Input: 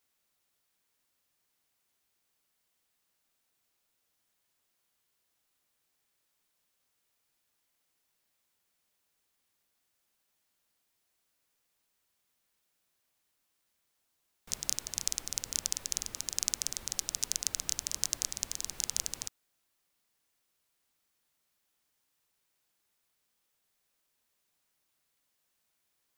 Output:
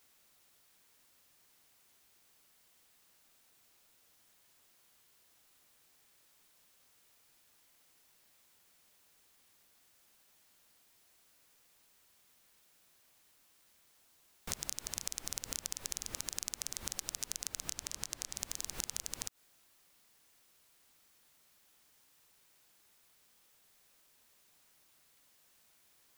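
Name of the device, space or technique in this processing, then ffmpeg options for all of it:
de-esser from a sidechain: -filter_complex "[0:a]asplit=2[a][b];[b]highpass=6k,apad=whole_len=1154117[c];[a][c]sidechaincompress=threshold=-44dB:ratio=5:attack=2.1:release=98,asettb=1/sr,asplit=3[d][e][f];[d]atrim=end=17.704[g];[e]atrim=start=17.7:end=18.36,asetpts=PTS-STARTPTS,afade=t=in:d=0.004:c=qsin,afade=t=out:st=0.656:d=0.004:c=qsin,highshelf=f=10k:g=-5.5[h];[f]atrim=start=18.356[i];[g][h]acrossfade=d=0.004:c1=hsin:c2=qsin[j];[j][i]acrossfade=d=0.004:c1=qsin:c2=hsin,volume=10.5dB"

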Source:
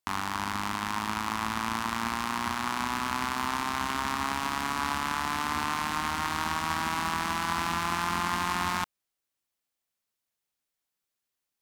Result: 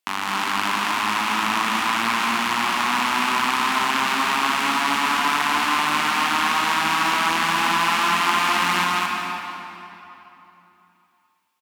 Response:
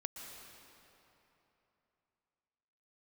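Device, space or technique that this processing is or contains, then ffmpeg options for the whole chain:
stadium PA: -filter_complex "[0:a]highpass=210,equalizer=f=2.7k:t=o:w=0.84:g=6.5,aecho=1:1:157.4|218.7:0.355|0.794[a];[1:a]atrim=start_sample=2205[b];[a][b]afir=irnorm=-1:irlink=0,volume=7.5dB"

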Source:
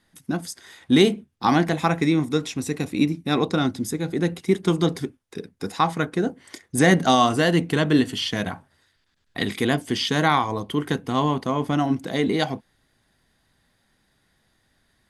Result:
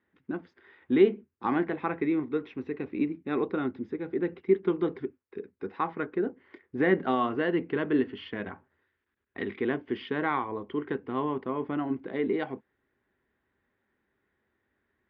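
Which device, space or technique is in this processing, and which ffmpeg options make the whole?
bass cabinet: -af "lowpass=f=6.1k:w=0.5412,lowpass=f=6.1k:w=1.3066,highpass=70,equalizer=f=110:t=q:w=4:g=-7,equalizer=f=160:t=q:w=4:g=-10,equalizer=f=390:t=q:w=4:g=8,equalizer=f=700:t=q:w=4:g=-6,lowpass=f=2.4k:w=0.5412,lowpass=f=2.4k:w=1.3066,volume=-8dB"

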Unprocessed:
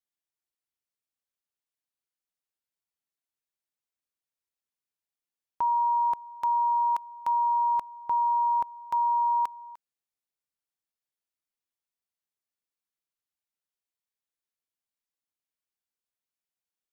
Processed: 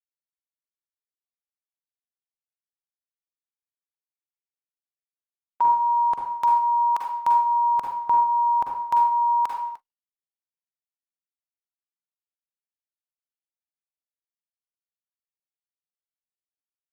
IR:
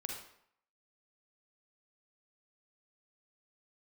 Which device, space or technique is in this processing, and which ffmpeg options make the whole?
speakerphone in a meeting room: -filter_complex "[1:a]atrim=start_sample=2205[a];[0:a][a]afir=irnorm=-1:irlink=0,dynaudnorm=f=110:g=17:m=3.5dB,agate=range=-56dB:threshold=-43dB:ratio=16:detection=peak,volume=6dB" -ar 48000 -c:a libopus -b:a 20k

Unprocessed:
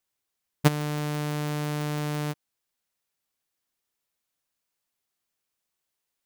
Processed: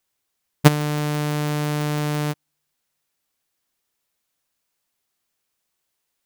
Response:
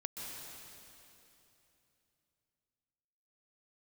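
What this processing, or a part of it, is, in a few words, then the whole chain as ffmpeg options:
keyed gated reverb: -filter_complex "[0:a]asplit=3[a][b][c];[1:a]atrim=start_sample=2205[d];[b][d]afir=irnorm=-1:irlink=0[e];[c]apad=whole_len=275899[f];[e][f]sidechaingate=range=-54dB:threshold=-22dB:ratio=16:detection=peak,volume=-9dB[g];[a][g]amix=inputs=2:normalize=0,volume=6dB"

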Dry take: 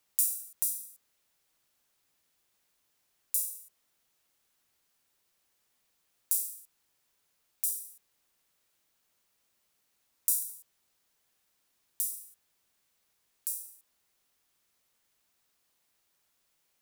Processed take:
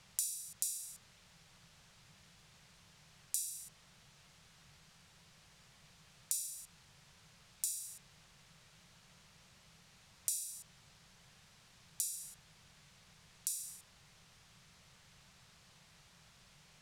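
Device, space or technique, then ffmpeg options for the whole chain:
jukebox: -af "lowpass=6k,lowshelf=f=210:t=q:w=3:g=8.5,acompressor=threshold=-52dB:ratio=4,volume=16dB"

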